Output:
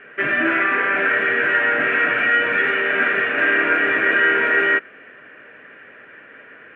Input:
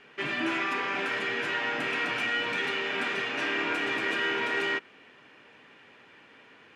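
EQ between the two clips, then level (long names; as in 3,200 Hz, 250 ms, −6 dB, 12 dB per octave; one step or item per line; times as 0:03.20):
drawn EQ curve 150 Hz 0 dB, 360 Hz +3 dB, 620 Hz +8 dB, 880 Hz −5 dB, 1,600 Hz +12 dB, 3,000 Hz −4 dB, 4,900 Hz −28 dB, 7,900 Hz −19 dB, 12,000 Hz −16 dB
+5.5 dB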